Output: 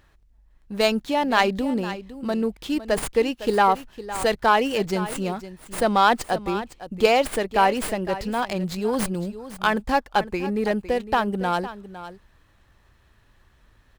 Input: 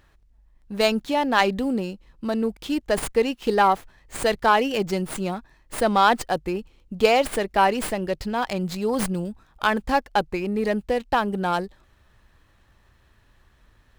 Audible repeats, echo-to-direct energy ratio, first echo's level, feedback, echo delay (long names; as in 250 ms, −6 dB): 1, −14.0 dB, −14.0 dB, repeats not evenly spaced, 508 ms